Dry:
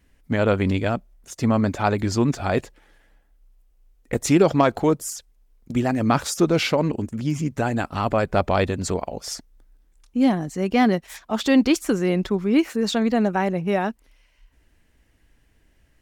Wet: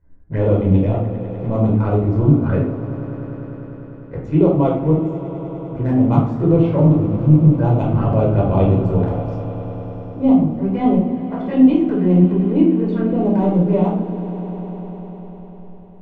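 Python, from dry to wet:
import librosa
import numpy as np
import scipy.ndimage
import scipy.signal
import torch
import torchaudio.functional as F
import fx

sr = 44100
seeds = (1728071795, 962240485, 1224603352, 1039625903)

y = fx.wiener(x, sr, points=15)
y = scipy.signal.sosfilt(scipy.signal.butter(2, 1800.0, 'lowpass', fs=sr, output='sos'), y)
y = fx.low_shelf(y, sr, hz=240.0, db=5.5)
y = fx.transient(y, sr, attack_db=-7, sustain_db=-11)
y = fx.rider(y, sr, range_db=3, speed_s=0.5)
y = fx.env_flanger(y, sr, rest_ms=11.0, full_db=-18.0)
y = fx.echo_swell(y, sr, ms=100, loudest=5, wet_db=-17.5)
y = fx.room_shoebox(y, sr, seeds[0], volume_m3=920.0, walls='furnished', distance_m=4.9)
y = F.gain(torch.from_numpy(y), -1.5).numpy()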